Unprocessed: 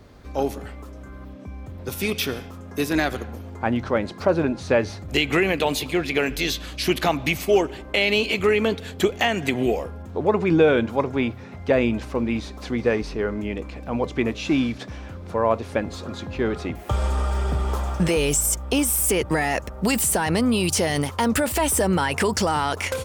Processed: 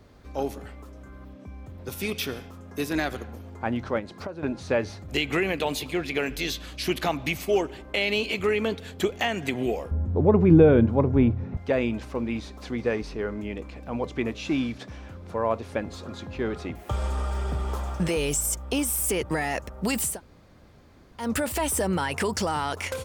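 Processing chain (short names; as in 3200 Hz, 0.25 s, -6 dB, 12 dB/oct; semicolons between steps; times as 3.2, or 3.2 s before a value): 3.99–4.43 compressor 8:1, threshold -28 dBFS, peak gain reduction 14 dB; 9.91–11.57 tilt -4.5 dB/oct; 20.13–21.23 room tone, crossfade 0.16 s; gain -5 dB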